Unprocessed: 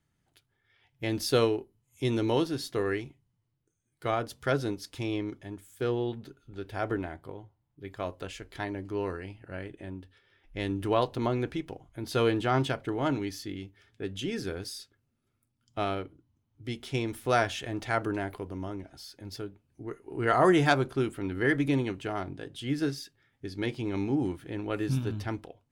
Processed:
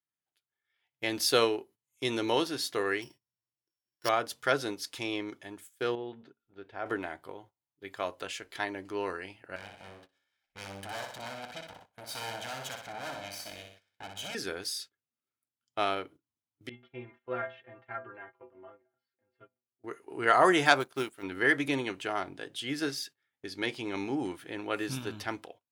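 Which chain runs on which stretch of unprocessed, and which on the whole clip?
3.02–4.09 s: sorted samples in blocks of 8 samples + rippled EQ curve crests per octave 1.3, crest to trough 7 dB
5.95–6.86 s: tape spacing loss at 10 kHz 28 dB + feedback comb 230 Hz, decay 0.46 s, mix 40%
9.56–14.35 s: comb filter that takes the minimum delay 1.3 ms + valve stage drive 38 dB, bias 0.6 + feedback delay 61 ms, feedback 47%, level -5.5 dB
16.69–19.84 s: low-pass 2.2 kHz 24 dB/octave + inharmonic resonator 120 Hz, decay 0.36 s, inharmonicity 0.008
20.80–21.23 s: companding laws mixed up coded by A + treble shelf 4.9 kHz +5.5 dB + upward expansion, over -44 dBFS
whole clip: gate -50 dBFS, range -16 dB; high-pass 840 Hz 6 dB/octave; level rider gain up to 5 dB

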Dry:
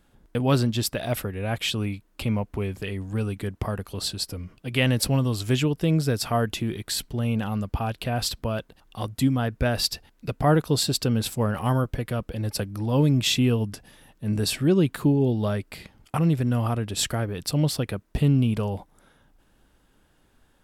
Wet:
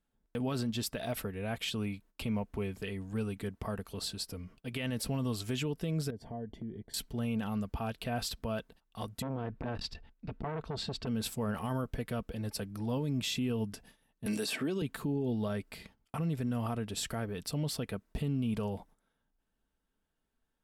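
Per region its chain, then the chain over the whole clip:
6.10–6.94 s: boxcar filter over 34 samples + compression 3:1, threshold -31 dBFS
9.22–11.07 s: low-pass 3.3 kHz + bass shelf 120 Hz +9.5 dB + transformer saturation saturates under 770 Hz
14.26–14.82 s: high-pass 270 Hz + three bands compressed up and down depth 100%
whole clip: gate -49 dBFS, range -14 dB; comb 4.5 ms, depth 32%; peak limiter -18.5 dBFS; trim -7.5 dB

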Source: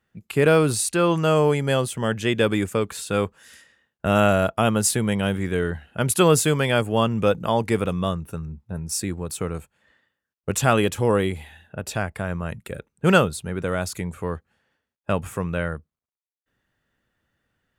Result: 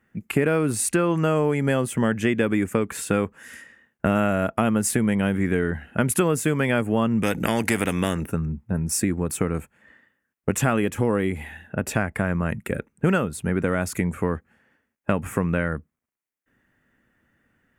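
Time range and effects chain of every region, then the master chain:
7.23–8.26 s: peaking EQ 1.1 kHz -10.5 dB 0.63 oct + spectrum-flattening compressor 2:1
whole clip: graphic EQ 250/2000/4000 Hz +8/+7/-10 dB; compression, threshold -22 dBFS; trim +4 dB

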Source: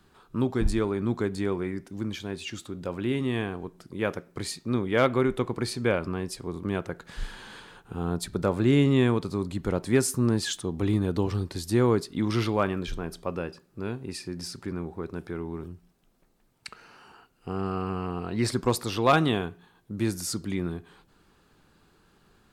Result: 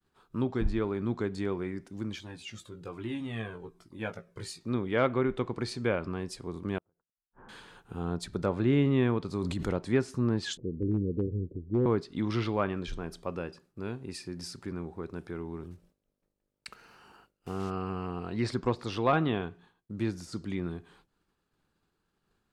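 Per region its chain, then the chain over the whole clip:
2.20–4.61 s: doubling 18 ms -6 dB + Shepard-style flanger falling 1.2 Hz
6.78–7.49 s: inverse Chebyshev low-pass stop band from 4.2 kHz, stop band 60 dB + compression 12:1, threshold -37 dBFS + inverted gate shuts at -37 dBFS, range -30 dB
9.28–9.76 s: treble shelf 8.2 kHz +10.5 dB + decay stretcher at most 21 dB/s
10.57–11.86 s: steep low-pass 520 Hz 72 dB/octave + upward compressor, threshold -36 dBFS + hard clipper -16 dBFS
15.70–17.69 s: block-companded coder 5-bit + mains buzz 50 Hz, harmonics 12, -67 dBFS -1 dB/octave
18.59–20.63 s: de-esser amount 70% + treble shelf 8.7 kHz -8 dB
whole clip: expander -52 dBFS; low-pass that closes with the level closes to 2.9 kHz, closed at -19 dBFS; trim -4 dB

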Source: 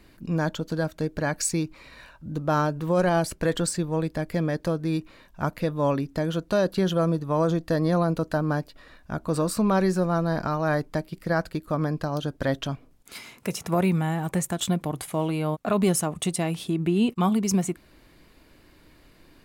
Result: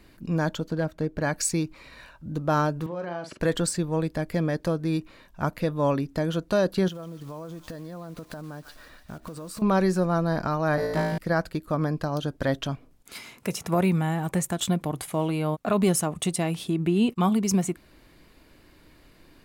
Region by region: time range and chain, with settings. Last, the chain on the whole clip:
0.68–1.22 s: treble shelf 2.8 kHz -9.5 dB + hard clipper -17.5 dBFS
2.86–3.40 s: compression, threshold -29 dBFS + band-pass 200–3700 Hz + doubling 46 ms -7 dB
6.88–9.62 s: block-companded coder 5-bit + feedback echo behind a high-pass 145 ms, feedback 53%, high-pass 2.2 kHz, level -10 dB + compression 10:1, threshold -34 dBFS
10.76–11.18 s: flutter echo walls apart 3.1 m, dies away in 1.1 s + transformer saturation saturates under 500 Hz
whole clip: none

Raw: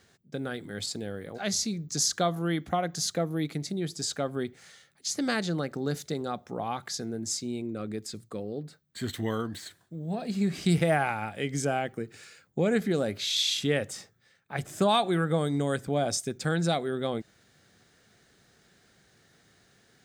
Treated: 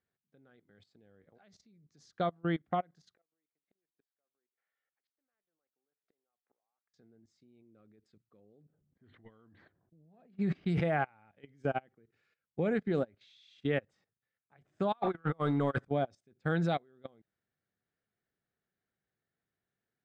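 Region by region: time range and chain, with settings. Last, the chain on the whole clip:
3.15–6.94 s: band-pass 490–2500 Hz + inverted gate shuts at -36 dBFS, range -27 dB
8.65–10.97 s: level-controlled noise filter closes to 470 Hz, open at -22.5 dBFS + decay stretcher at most 44 dB/s
14.92–15.85 s: peaking EQ 1.2 kHz +10 dB 1.1 oct + compressor with a negative ratio -31 dBFS + waveshaping leveller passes 1
whole clip: low-pass 2.6 kHz 12 dB/octave; level held to a coarse grid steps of 14 dB; upward expansion 2.5:1, over -41 dBFS

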